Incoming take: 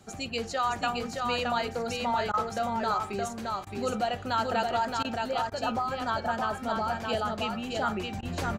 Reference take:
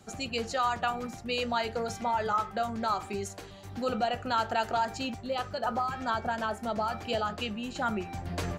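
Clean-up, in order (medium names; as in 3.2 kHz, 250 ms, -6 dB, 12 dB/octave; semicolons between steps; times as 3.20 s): interpolate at 2.32/3.65/5.03/5.50/8.21 s, 15 ms; inverse comb 620 ms -3.5 dB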